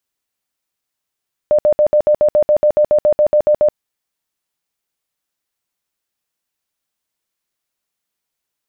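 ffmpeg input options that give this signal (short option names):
-f lavfi -i "aevalsrc='0.398*sin(2*PI*600*mod(t,0.14))*lt(mod(t,0.14),46/600)':d=2.24:s=44100"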